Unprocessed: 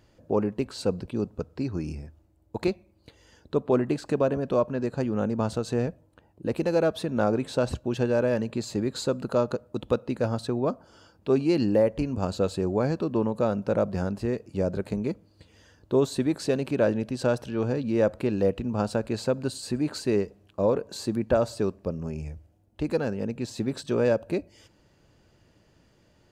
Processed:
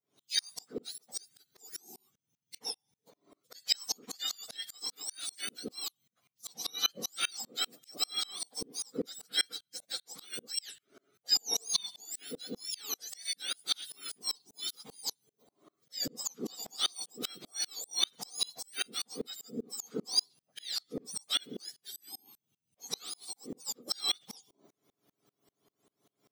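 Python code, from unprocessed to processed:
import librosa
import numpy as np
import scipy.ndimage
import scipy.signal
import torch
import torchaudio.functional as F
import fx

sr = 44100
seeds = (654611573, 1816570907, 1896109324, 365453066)

y = fx.octave_mirror(x, sr, pivot_hz=1400.0)
y = fx.dynamic_eq(y, sr, hz=5000.0, q=1.2, threshold_db=-41.0, ratio=4.0, max_db=6)
y = fx.tremolo_decay(y, sr, direction='swelling', hz=5.1, depth_db=33)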